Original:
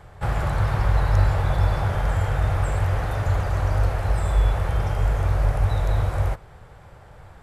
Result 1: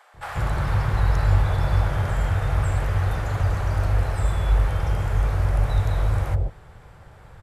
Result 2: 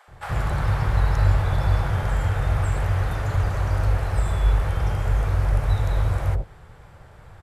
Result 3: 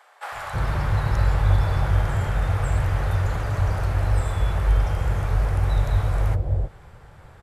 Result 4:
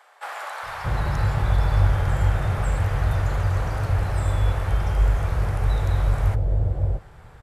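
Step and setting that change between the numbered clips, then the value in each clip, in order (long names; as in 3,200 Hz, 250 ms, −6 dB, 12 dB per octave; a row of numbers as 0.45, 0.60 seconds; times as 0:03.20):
multiband delay without the direct sound, delay time: 140, 80, 320, 630 milliseconds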